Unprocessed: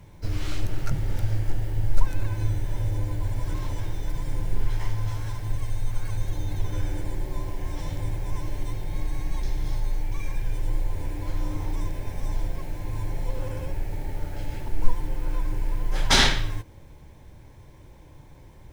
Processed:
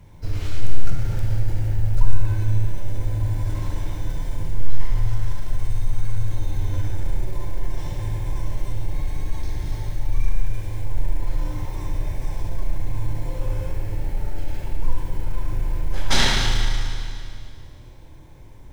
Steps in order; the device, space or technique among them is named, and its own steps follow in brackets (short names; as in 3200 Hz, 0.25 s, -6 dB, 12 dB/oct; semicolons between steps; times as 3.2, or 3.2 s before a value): low shelf 88 Hz +5.5 dB; Schroeder reverb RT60 2.3 s, combs from 25 ms, DRR 0 dB; parallel distortion (in parallel at -10 dB: hard clip -15.5 dBFS, distortion -4 dB); on the sum: gain -4 dB